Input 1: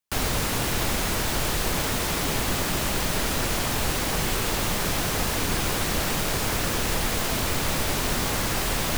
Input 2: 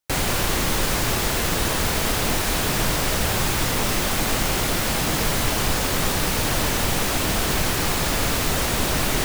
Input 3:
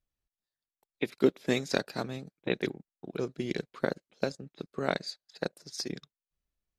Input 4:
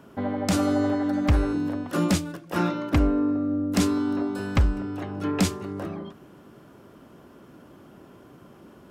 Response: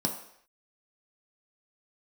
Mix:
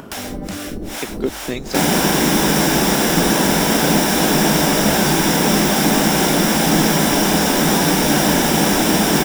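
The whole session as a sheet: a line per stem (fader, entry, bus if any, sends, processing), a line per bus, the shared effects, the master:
-2.0 dB, 0.00 s, send -13.5 dB, rotary speaker horn 0.6 Hz; harmonic tremolo 2.5 Hz, depth 100%, crossover 550 Hz
+2.0 dB, 1.65 s, send -6.5 dB, HPF 75 Hz 12 dB/oct
+2.0 dB, 0.00 s, no send, dry
-8.5 dB, 0.00 s, no send, auto duck -14 dB, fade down 0.30 s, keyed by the third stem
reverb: on, pre-delay 3 ms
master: upward compressor, threshold -20 dBFS

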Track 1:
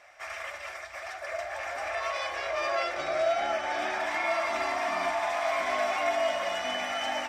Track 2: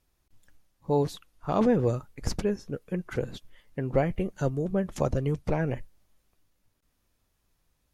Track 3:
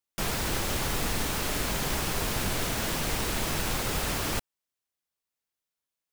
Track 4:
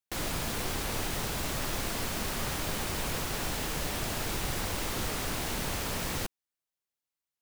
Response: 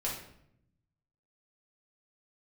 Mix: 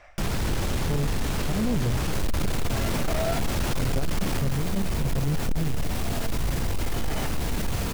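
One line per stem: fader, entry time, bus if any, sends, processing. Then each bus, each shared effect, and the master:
+2.0 dB, 0.00 s, no send, high shelf 7800 Hz -9.5 dB; auto duck -17 dB, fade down 0.25 s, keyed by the second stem
-10.5 dB, 0.00 s, muted 2.46–3.55, send -22 dB, tilt -3.5 dB/oct
+2.0 dB, 0.00 s, no send, high shelf 9700 Hz -6 dB
-1.5 dB, 2.00 s, send -4.5 dB, dry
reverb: on, RT60 0.70 s, pre-delay 4 ms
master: low shelf 320 Hz +10 dB; soft clip -14.5 dBFS, distortion -10 dB; limiter -19 dBFS, peak gain reduction 4.5 dB

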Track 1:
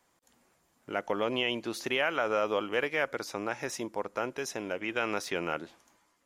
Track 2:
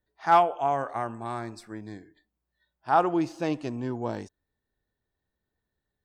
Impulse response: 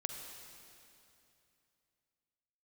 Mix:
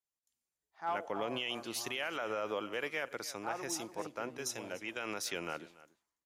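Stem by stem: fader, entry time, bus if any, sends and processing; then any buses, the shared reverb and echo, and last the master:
-6.0 dB, 0.00 s, no send, echo send -21 dB, high shelf 3400 Hz +9.5 dB; three-band expander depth 70%
-17.0 dB, 0.55 s, no send, echo send -12 dB, tone controls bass -6 dB, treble -3 dB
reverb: off
echo: echo 0.287 s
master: limiter -25.5 dBFS, peak gain reduction 8 dB

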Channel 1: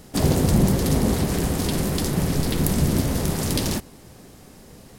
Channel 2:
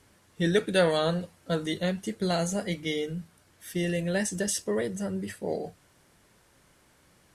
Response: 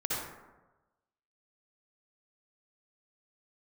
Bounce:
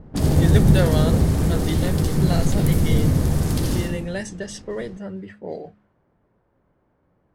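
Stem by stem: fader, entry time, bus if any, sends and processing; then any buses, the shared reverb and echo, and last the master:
-5.0 dB, 0.00 s, send -5.5 dB, low shelf 180 Hz +10 dB; auto duck -12 dB, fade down 0.40 s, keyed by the second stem
-0.5 dB, 0.00 s, no send, de-hum 69.13 Hz, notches 5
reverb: on, RT60 1.1 s, pre-delay 52 ms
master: low-pass opened by the level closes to 860 Hz, open at -21.5 dBFS

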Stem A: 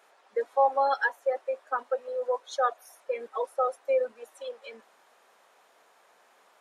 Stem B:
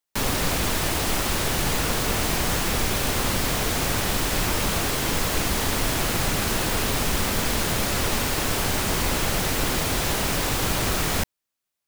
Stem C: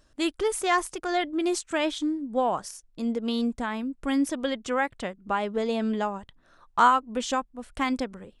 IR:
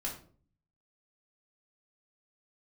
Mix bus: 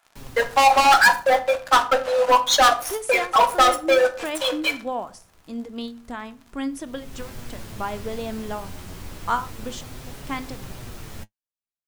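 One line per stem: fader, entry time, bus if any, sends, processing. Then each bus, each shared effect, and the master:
+2.5 dB, 0.00 s, send -4.5 dB, HPF 720 Hz 24 dB/oct; sample leveller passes 5
-14.5 dB, 0.00 s, no send, low shelf 260 Hz +9.5 dB; flange 0.29 Hz, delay 6.7 ms, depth 5.1 ms, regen +46%; auto duck -22 dB, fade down 1.95 s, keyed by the first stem
-4.5 dB, 2.50 s, send -12 dB, ending taper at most 190 dB/s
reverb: on, RT60 0.45 s, pre-delay 3 ms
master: dry

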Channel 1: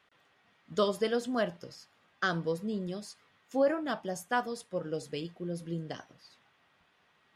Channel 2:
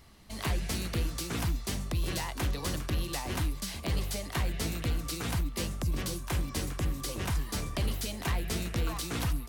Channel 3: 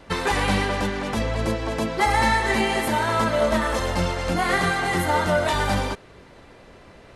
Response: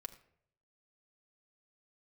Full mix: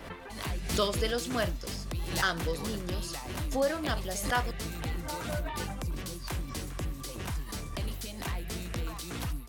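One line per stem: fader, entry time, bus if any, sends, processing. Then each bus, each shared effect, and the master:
-1.0 dB, 0.00 s, muted 4.51–6.12, no send, low shelf 340 Hz -5.5 dB; high shelf 2200 Hz +8.5 dB
-4.5 dB, 0.00 s, no send, dry
-6.0 dB, 0.00 s, no send, reverb removal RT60 1.6 s; LPF 3000 Hz 24 dB/oct; compressor 3:1, threshold -32 dBFS, peak gain reduction 12 dB; auto duck -16 dB, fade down 0.50 s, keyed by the first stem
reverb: off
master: backwards sustainer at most 70 dB/s

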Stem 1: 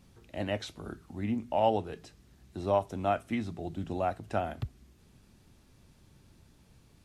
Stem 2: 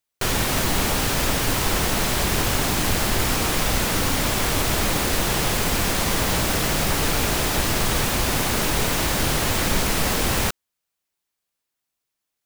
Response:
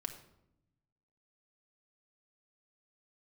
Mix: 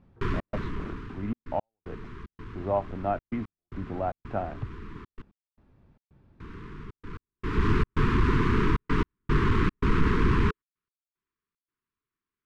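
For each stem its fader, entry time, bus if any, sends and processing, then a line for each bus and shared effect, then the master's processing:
+0.5 dB, 0.00 s, no send, dry
-3.5 dB, 0.00 s, muted 5.22–6.4, no send, half-waves squared off; elliptic band-stop 430–1000 Hz, stop band 40 dB; auto duck -19 dB, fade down 1.20 s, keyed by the first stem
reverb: off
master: LPF 1500 Hz 12 dB/oct; step gate "xxx.xxxxxx.x.." 113 bpm -60 dB

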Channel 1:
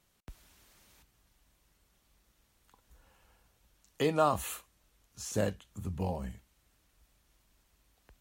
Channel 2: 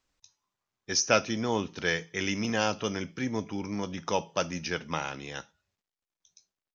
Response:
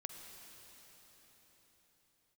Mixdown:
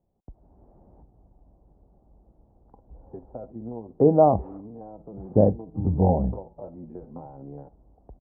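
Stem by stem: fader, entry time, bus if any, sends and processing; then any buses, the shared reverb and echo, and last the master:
+2.0 dB, 0.00 s, no send, dry
-5.5 dB, 2.25 s, no send, stepped spectrum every 50 ms; compressor 4:1, threshold -38 dBFS, peak gain reduction 15.5 dB; flange 0.33 Hz, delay 5.6 ms, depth 3 ms, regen +38%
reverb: off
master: AGC gain up to 13.5 dB; Chebyshev low-pass 790 Hz, order 4

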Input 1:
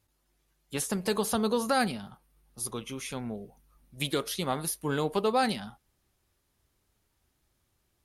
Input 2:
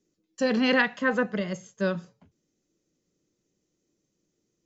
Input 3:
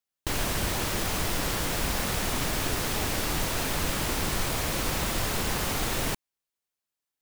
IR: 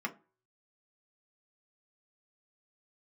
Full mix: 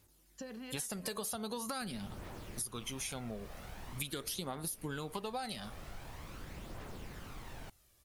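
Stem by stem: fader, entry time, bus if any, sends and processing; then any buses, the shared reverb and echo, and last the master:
+1.5 dB, 0.00 s, bus A, no send, high shelf 3800 Hz +8 dB
-4.5 dB, 0.00 s, no bus, no send, compressor, threshold -33 dBFS, peak gain reduction 15 dB; auto duck -16 dB, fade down 1.30 s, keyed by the first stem
-19.0 dB, 1.55 s, bus A, no send, high shelf 3700 Hz -11 dB
bus A: 0.0 dB, phaser 0.44 Hz, delay 1.8 ms, feedback 39%; compressor, threshold -27 dBFS, peak gain reduction 9.5 dB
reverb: off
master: compressor 2.5:1, threshold -41 dBFS, peak gain reduction 10.5 dB

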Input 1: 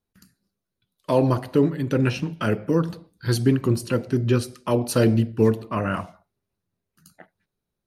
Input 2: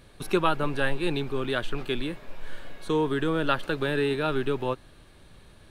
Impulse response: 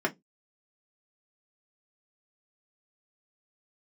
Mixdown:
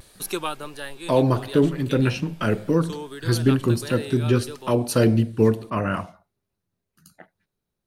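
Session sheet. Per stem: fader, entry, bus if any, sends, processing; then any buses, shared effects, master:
+0.5 dB, 0.00 s, no send, dry
0.0 dB, 0.00 s, no send, tone controls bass -6 dB, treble +15 dB; vibrato 1.6 Hz 75 cents; auto duck -9 dB, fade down 0.85 s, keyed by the first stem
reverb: off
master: dry

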